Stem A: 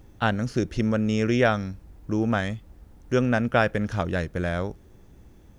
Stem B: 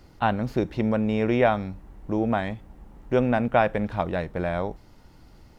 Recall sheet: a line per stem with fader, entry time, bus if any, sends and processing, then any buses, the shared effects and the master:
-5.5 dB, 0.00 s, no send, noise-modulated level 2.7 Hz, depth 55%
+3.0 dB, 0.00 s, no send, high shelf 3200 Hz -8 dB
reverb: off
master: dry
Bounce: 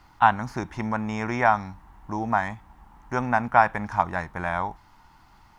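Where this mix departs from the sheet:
stem A: missing noise-modulated level 2.7 Hz, depth 55%; master: extra resonant low shelf 690 Hz -10 dB, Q 3

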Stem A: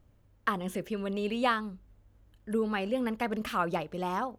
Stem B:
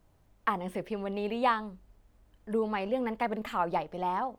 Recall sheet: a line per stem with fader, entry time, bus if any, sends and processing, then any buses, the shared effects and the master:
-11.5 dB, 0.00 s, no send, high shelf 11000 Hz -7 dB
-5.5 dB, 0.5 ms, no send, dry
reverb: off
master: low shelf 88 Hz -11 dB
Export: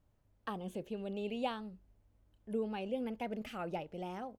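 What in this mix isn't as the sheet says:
stem B -5.5 dB -> -13.5 dB; master: missing low shelf 88 Hz -11 dB

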